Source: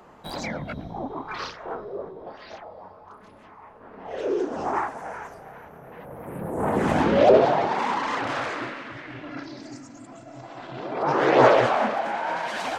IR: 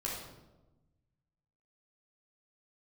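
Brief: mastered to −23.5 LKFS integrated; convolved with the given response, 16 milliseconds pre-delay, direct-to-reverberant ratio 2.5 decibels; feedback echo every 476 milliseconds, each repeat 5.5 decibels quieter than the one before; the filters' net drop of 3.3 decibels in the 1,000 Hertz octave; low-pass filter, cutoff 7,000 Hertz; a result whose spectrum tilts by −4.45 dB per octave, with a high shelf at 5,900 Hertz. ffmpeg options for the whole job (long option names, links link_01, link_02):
-filter_complex "[0:a]lowpass=7000,equalizer=frequency=1000:width_type=o:gain=-4.5,highshelf=frequency=5900:gain=5,aecho=1:1:476|952|1428|1904|2380|2856|3332:0.531|0.281|0.149|0.079|0.0419|0.0222|0.0118,asplit=2[link_01][link_02];[1:a]atrim=start_sample=2205,adelay=16[link_03];[link_02][link_03]afir=irnorm=-1:irlink=0,volume=-5.5dB[link_04];[link_01][link_04]amix=inputs=2:normalize=0,volume=-1dB"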